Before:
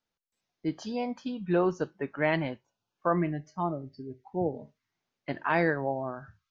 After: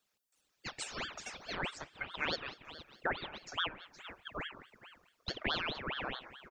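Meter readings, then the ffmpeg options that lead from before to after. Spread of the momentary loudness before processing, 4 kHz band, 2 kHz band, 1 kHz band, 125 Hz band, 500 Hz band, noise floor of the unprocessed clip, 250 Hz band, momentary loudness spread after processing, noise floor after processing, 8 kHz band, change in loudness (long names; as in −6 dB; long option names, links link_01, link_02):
15 LU, +9.5 dB, −4.0 dB, −9.0 dB, −16.0 dB, −15.5 dB, below −85 dBFS, −17.5 dB, 14 LU, −81 dBFS, can't be measured, −8.5 dB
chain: -filter_complex "[0:a]highpass=1100,equalizer=frequency=3100:width=1.4:gain=-6.5,asplit=2[link_01][link_02];[link_02]adelay=185,lowpass=frequency=2000:poles=1,volume=-23.5dB,asplit=2[link_03][link_04];[link_04]adelay=185,lowpass=frequency=2000:poles=1,volume=0.25[link_05];[link_03][link_05]amix=inputs=2:normalize=0[link_06];[link_01][link_06]amix=inputs=2:normalize=0,acompressor=threshold=-49dB:ratio=2.5,bandreject=frequency=4700:width=17,aecho=1:1:1:0.9,asplit=2[link_07][link_08];[link_08]aecho=0:1:466|932:0.178|0.0356[link_09];[link_07][link_09]amix=inputs=2:normalize=0,aeval=exprs='val(0)*sin(2*PI*1400*n/s+1400*0.8/4.7*sin(2*PI*4.7*n/s))':channel_layout=same,volume=10.5dB"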